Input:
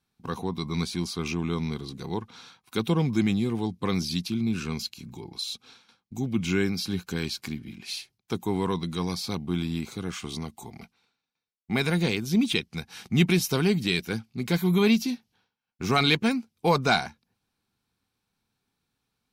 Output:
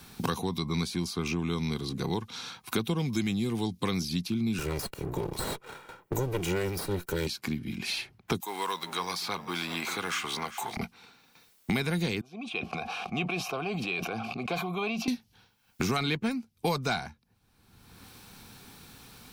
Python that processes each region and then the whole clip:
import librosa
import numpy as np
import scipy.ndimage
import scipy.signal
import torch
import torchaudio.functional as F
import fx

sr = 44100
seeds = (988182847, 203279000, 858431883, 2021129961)

y = fx.chain(x, sr, fx.lower_of_two(delay_ms=2.1),
    fx.peak_eq(hz=4500.0, db=-9.0, octaves=1.8),
    fx.leveller(passes=1), at=(4.58, 7.27))
y = fx.chain(y, sr, fx.law_mismatch(coded='mu'),
    fx.highpass(hz=850.0, slope=12),
    fx.echo_single(ms=390, db=-16.0), at=(8.4, 10.77))
y = fx.chain(y, sr, fx.vowel_filter(vowel='a'),
    fx.sustainer(db_per_s=32.0), at=(12.21, 15.08))
y = fx.high_shelf(y, sr, hz=11000.0, db=6.5)
y = fx.band_squash(y, sr, depth_pct=100)
y = y * 10.0 ** (-2.0 / 20.0)